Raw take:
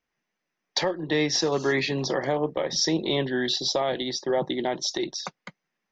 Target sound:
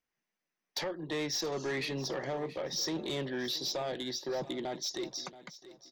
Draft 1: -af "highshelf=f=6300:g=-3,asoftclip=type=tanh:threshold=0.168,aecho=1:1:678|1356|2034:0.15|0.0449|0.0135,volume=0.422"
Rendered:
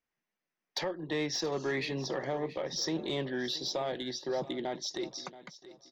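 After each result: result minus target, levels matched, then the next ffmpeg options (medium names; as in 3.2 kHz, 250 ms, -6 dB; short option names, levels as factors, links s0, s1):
saturation: distortion -9 dB; 8 kHz band -2.5 dB
-af "highshelf=f=6300:g=-3,asoftclip=type=tanh:threshold=0.0841,aecho=1:1:678|1356|2034:0.15|0.0449|0.0135,volume=0.422"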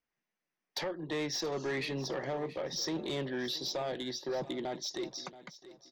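8 kHz band -2.0 dB
-af "highshelf=f=6300:g=6,asoftclip=type=tanh:threshold=0.0841,aecho=1:1:678|1356|2034:0.15|0.0449|0.0135,volume=0.422"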